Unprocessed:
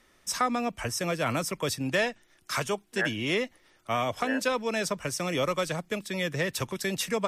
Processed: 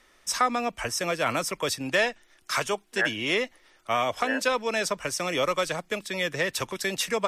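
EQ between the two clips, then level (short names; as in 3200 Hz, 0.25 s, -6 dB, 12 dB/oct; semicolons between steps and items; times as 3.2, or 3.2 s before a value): bell 130 Hz -9.5 dB 2.4 oct; high shelf 11000 Hz -6 dB; +4.0 dB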